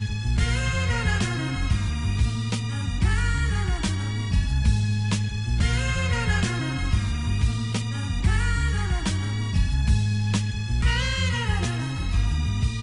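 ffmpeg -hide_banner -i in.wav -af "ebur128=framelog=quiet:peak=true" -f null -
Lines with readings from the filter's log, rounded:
Integrated loudness:
  I:         -25.0 LUFS
  Threshold: -35.0 LUFS
Loudness range:
  LRA:         1.0 LU
  Threshold: -44.9 LUFS
  LRA low:   -25.5 LUFS
  LRA high:  -24.5 LUFS
True peak:
  Peak:      -10.6 dBFS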